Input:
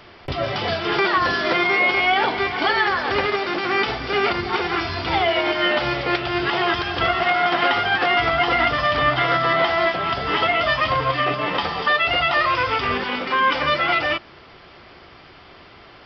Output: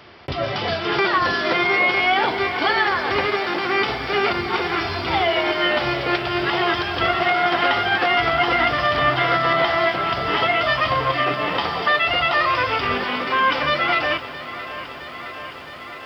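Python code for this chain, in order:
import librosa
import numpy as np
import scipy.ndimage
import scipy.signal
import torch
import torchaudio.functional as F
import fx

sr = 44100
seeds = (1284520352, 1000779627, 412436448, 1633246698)

y = scipy.signal.sosfilt(scipy.signal.butter(2, 57.0, 'highpass', fs=sr, output='sos'), x)
y = fx.echo_crushed(y, sr, ms=666, feedback_pct=80, bits=8, wet_db=-15.0)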